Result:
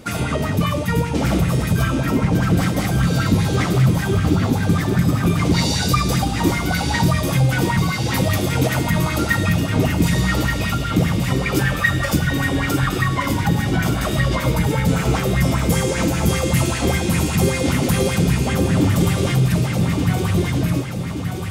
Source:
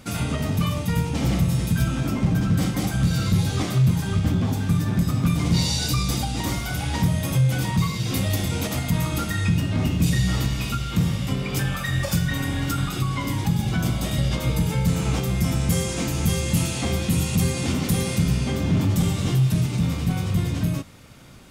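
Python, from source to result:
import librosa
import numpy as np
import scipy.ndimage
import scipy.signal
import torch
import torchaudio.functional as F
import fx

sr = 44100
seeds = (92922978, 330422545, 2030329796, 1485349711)

y = fx.echo_feedback(x, sr, ms=1178, feedback_pct=52, wet_db=-7)
y = fx.bell_lfo(y, sr, hz=5.1, low_hz=320.0, high_hz=2000.0, db=13)
y = y * librosa.db_to_amplitude(2.0)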